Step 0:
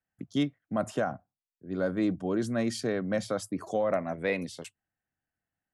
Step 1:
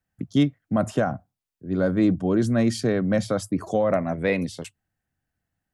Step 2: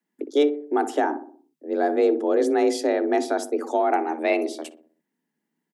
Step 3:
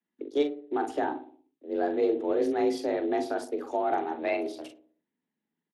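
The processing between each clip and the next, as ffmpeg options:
ffmpeg -i in.wav -af "lowshelf=frequency=190:gain=10.5,volume=4.5dB" out.wav
ffmpeg -i in.wav -filter_complex "[0:a]afreqshift=150,asplit=2[link_01][link_02];[link_02]adelay=61,lowpass=frequency=940:poles=1,volume=-9dB,asplit=2[link_03][link_04];[link_04]adelay=61,lowpass=frequency=940:poles=1,volume=0.54,asplit=2[link_05][link_06];[link_06]adelay=61,lowpass=frequency=940:poles=1,volume=0.54,asplit=2[link_07][link_08];[link_08]adelay=61,lowpass=frequency=940:poles=1,volume=0.54,asplit=2[link_09][link_10];[link_10]adelay=61,lowpass=frequency=940:poles=1,volume=0.54,asplit=2[link_11][link_12];[link_12]adelay=61,lowpass=frequency=940:poles=1,volume=0.54[link_13];[link_01][link_03][link_05][link_07][link_09][link_11][link_13]amix=inputs=7:normalize=0" out.wav
ffmpeg -i in.wav -filter_complex "[0:a]asplit=2[link_01][link_02];[link_02]adelay=42,volume=-7.5dB[link_03];[link_01][link_03]amix=inputs=2:normalize=0,volume=-7dB" -ar 32000 -c:a libspeex -b:a 24k out.spx

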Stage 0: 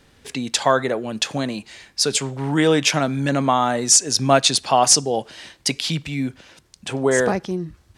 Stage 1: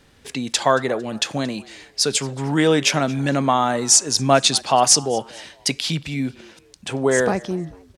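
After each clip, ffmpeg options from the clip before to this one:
ffmpeg -i in.wav -filter_complex "[0:a]asplit=3[link_01][link_02][link_03];[link_02]adelay=226,afreqshift=90,volume=-23dB[link_04];[link_03]adelay=452,afreqshift=180,volume=-31.9dB[link_05];[link_01][link_04][link_05]amix=inputs=3:normalize=0" out.wav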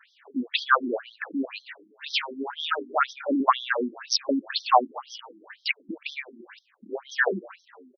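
ffmpeg -i in.wav -af "firequalizer=gain_entry='entry(660,0);entry(1400,9);entry(3600,-1)':delay=0.05:min_phase=1,afftfilt=real='re*between(b*sr/1024,250*pow(4500/250,0.5+0.5*sin(2*PI*2*pts/sr))/1.41,250*pow(4500/250,0.5+0.5*sin(2*PI*2*pts/sr))*1.41)':imag='im*between(b*sr/1024,250*pow(4500/250,0.5+0.5*sin(2*PI*2*pts/sr))/1.41,250*pow(4500/250,0.5+0.5*sin(2*PI*2*pts/sr))*1.41)':win_size=1024:overlap=0.75" out.wav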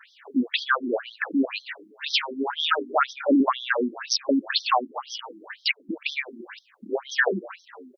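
ffmpeg -i in.wav -af "alimiter=limit=-17dB:level=0:latency=1:release=337,volume=6dB" out.wav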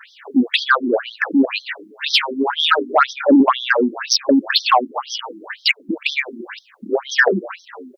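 ffmpeg -i in.wav -af "acontrast=68,volume=2dB" out.wav

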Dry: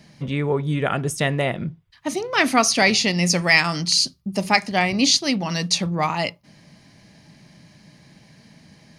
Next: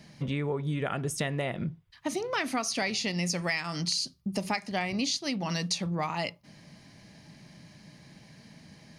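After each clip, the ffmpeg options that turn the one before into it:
ffmpeg -i in.wav -af "acompressor=threshold=-25dB:ratio=6,volume=-2.5dB" out.wav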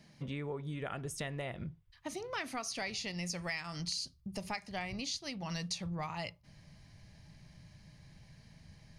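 ffmpeg -i in.wav -af "asubboost=boost=10.5:cutoff=77,volume=-8dB" out.wav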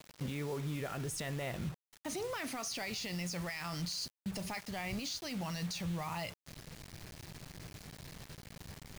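ffmpeg -i in.wav -af "alimiter=level_in=12dB:limit=-24dB:level=0:latency=1:release=17,volume=-12dB,acrusher=bits=8:mix=0:aa=0.000001,volume=5dB" out.wav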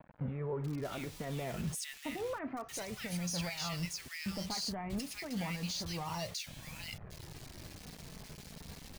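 ffmpeg -i in.wav -filter_complex "[0:a]acrossover=split=1700[link_01][link_02];[link_02]adelay=640[link_03];[link_01][link_03]amix=inputs=2:normalize=0,flanger=delay=1.2:depth=3.5:regen=-43:speed=0.3:shape=sinusoidal,volume=5dB" out.wav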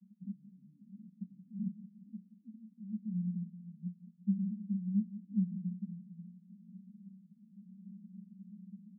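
ffmpeg -i in.wav -af "asuperpass=centerf=200:order=8:qfactor=4.5,aecho=1:1:176|352|528|704|880|1056:0.2|0.114|0.0648|0.037|0.0211|0.012,volume=8.5dB" out.wav

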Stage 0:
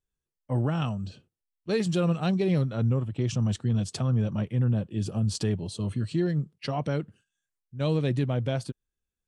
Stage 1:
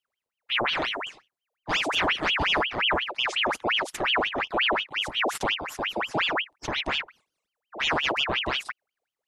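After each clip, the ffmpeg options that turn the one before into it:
ffmpeg -i in.wav -af "equalizer=frequency=1500:width=1.5:gain=3,aeval=exprs='val(0)*sin(2*PI*1800*n/s+1800*0.75/5.6*sin(2*PI*5.6*n/s))':channel_layout=same,volume=2.5dB" out.wav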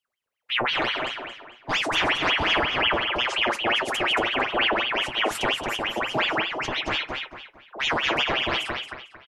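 ffmpeg -i in.wav -filter_complex "[0:a]asplit=2[link_01][link_02];[link_02]adelay=226,lowpass=frequency=4900:poles=1,volume=-4dB,asplit=2[link_03][link_04];[link_04]adelay=226,lowpass=frequency=4900:poles=1,volume=0.35,asplit=2[link_05][link_06];[link_06]adelay=226,lowpass=frequency=4900:poles=1,volume=0.35,asplit=2[link_07][link_08];[link_08]adelay=226,lowpass=frequency=4900:poles=1,volume=0.35[link_09];[link_03][link_05][link_07][link_09]amix=inputs=4:normalize=0[link_10];[link_01][link_10]amix=inputs=2:normalize=0,flanger=delay=7.3:depth=2.1:regen=65:speed=1.8:shape=triangular,volume=5dB" out.wav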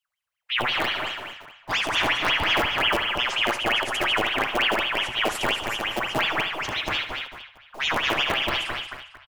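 ffmpeg -i in.wav -filter_complex "[0:a]aecho=1:1:73|146|219|292:0.282|0.104|0.0386|0.0143,acrossover=split=140|720|2200[link_01][link_02][link_03][link_04];[link_02]acrusher=bits=5:dc=4:mix=0:aa=0.000001[link_05];[link_01][link_05][link_03][link_04]amix=inputs=4:normalize=0" out.wav

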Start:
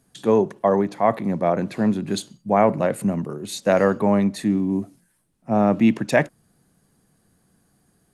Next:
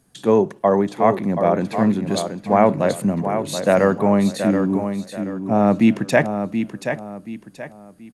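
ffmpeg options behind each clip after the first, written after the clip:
ffmpeg -i in.wav -af "aecho=1:1:729|1458|2187|2916:0.398|0.131|0.0434|0.0143,volume=2dB" out.wav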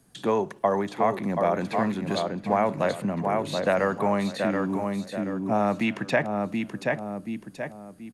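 ffmpeg -i in.wav -filter_complex "[0:a]acrossover=split=89|700|4100[link_01][link_02][link_03][link_04];[link_01]acompressor=threshold=-50dB:ratio=4[link_05];[link_02]acompressor=threshold=-27dB:ratio=4[link_06];[link_03]acompressor=threshold=-23dB:ratio=4[link_07];[link_04]acompressor=threshold=-51dB:ratio=4[link_08];[link_05][link_06][link_07][link_08]amix=inputs=4:normalize=0" out.wav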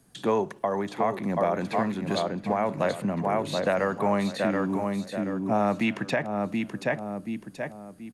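ffmpeg -i in.wav -af "alimiter=limit=-13.5dB:level=0:latency=1:release=299" out.wav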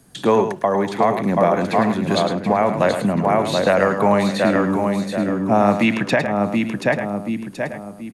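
ffmpeg -i in.wav -af "aecho=1:1:107:0.355,volume=8.5dB" out.wav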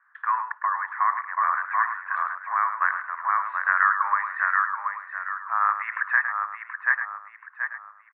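ffmpeg -i in.wav -af "asuperpass=centerf=1400:order=8:qfactor=1.7,volume=4.5dB" out.wav

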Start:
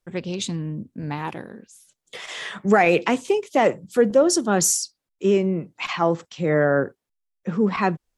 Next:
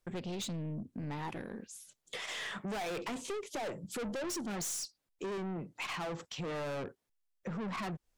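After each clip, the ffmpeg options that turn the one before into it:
ffmpeg -i in.wav -af "aeval=exprs='(tanh(28.2*val(0)+0.15)-tanh(0.15))/28.2':channel_layout=same,acompressor=threshold=-40dB:ratio=2.5" out.wav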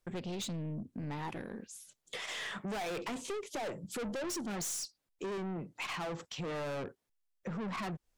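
ffmpeg -i in.wav -af anull out.wav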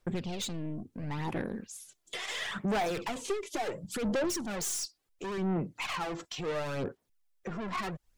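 ffmpeg -i in.wav -af "aphaser=in_gain=1:out_gain=1:delay=3:decay=0.51:speed=0.72:type=sinusoidal,volume=2.5dB" out.wav

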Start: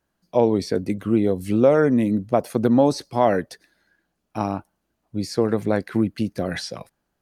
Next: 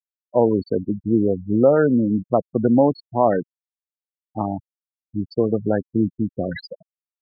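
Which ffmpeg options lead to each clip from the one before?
ffmpeg -i in.wav -af "afftfilt=real='re*gte(hypot(re,im),0.126)':imag='im*gte(hypot(re,im),0.126)':win_size=1024:overlap=0.75,volume=1dB" out.wav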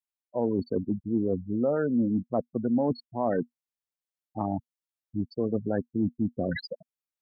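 ffmpeg -i in.wav -af "adynamicequalizer=threshold=0.02:dfrequency=240:dqfactor=7.9:tfrequency=240:tqfactor=7.9:attack=5:release=100:ratio=0.375:range=3.5:mode=boostabove:tftype=bell,areverse,acompressor=threshold=-23dB:ratio=4,areverse,volume=-1.5dB" out.wav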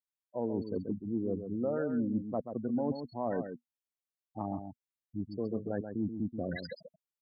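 ffmpeg -i in.wav -filter_complex "[0:a]asplit=2[link_01][link_02];[link_02]adelay=134.1,volume=-8dB,highshelf=frequency=4000:gain=-3.02[link_03];[link_01][link_03]amix=inputs=2:normalize=0,volume=-7dB" out.wav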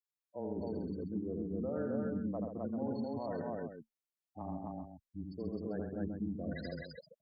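ffmpeg -i in.wav -af "afreqshift=-16,aecho=1:1:81.63|259.5:0.631|0.891,volume=-7dB" out.wav

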